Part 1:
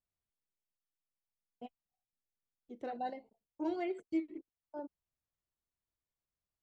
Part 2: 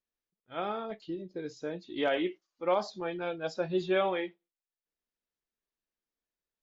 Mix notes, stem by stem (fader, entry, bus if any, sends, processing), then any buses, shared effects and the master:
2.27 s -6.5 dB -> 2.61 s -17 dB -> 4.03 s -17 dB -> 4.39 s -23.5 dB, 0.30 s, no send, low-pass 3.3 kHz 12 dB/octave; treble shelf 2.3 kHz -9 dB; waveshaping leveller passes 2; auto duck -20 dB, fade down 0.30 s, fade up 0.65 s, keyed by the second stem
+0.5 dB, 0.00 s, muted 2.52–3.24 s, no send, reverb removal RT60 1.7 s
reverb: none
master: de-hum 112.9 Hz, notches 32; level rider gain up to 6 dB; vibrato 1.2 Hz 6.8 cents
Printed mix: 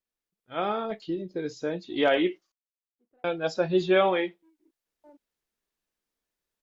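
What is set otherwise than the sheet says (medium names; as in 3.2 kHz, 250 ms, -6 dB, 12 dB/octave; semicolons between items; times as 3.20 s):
stem 2: missing reverb removal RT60 1.7 s; master: missing de-hum 112.9 Hz, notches 32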